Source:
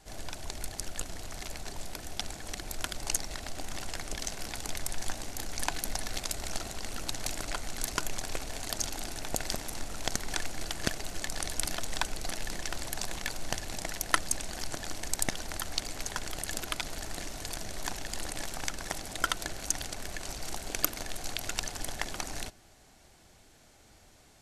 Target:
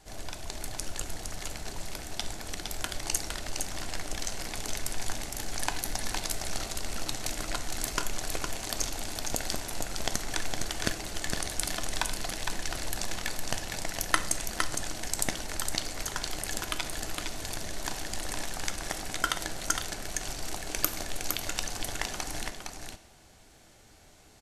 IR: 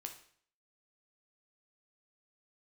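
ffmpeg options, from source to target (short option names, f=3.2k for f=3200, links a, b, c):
-filter_complex "[0:a]aecho=1:1:461:0.562,asplit=2[a][b];[1:a]atrim=start_sample=2205[c];[b][c]afir=irnorm=-1:irlink=0,volume=5dB[d];[a][d]amix=inputs=2:normalize=0,volume=-5.5dB"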